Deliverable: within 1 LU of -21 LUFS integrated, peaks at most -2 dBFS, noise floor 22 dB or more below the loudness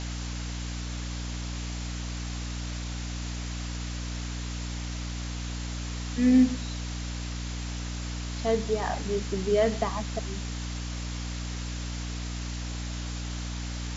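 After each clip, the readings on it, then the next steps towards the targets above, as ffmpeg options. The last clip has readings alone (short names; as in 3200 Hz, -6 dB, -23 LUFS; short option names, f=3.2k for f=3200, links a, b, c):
hum 60 Hz; harmonics up to 300 Hz; hum level -32 dBFS; noise floor -34 dBFS; noise floor target -54 dBFS; loudness -31.5 LUFS; peak -11.0 dBFS; loudness target -21.0 LUFS
-> -af "bandreject=f=60:t=h:w=6,bandreject=f=120:t=h:w=6,bandreject=f=180:t=h:w=6,bandreject=f=240:t=h:w=6,bandreject=f=300:t=h:w=6"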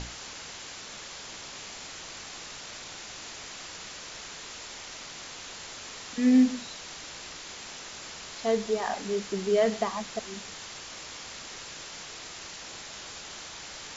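hum none; noise floor -43 dBFS; noise floor target -55 dBFS
-> -af "afftdn=nr=12:nf=-43"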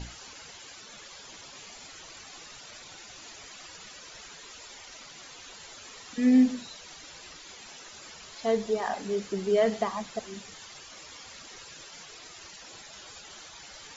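noise floor -48 dBFS; noise floor target -50 dBFS
-> -af "afftdn=nr=6:nf=-48"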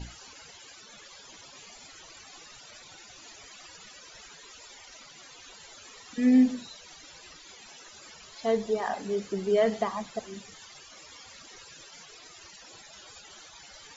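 noise floor -51 dBFS; loudness -27.5 LUFS; peak -12.5 dBFS; loudness target -21.0 LUFS
-> -af "volume=6.5dB"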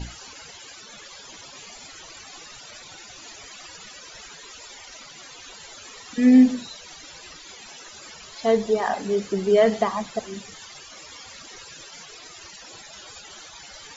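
loudness -21.0 LUFS; peak -6.0 dBFS; noise floor -44 dBFS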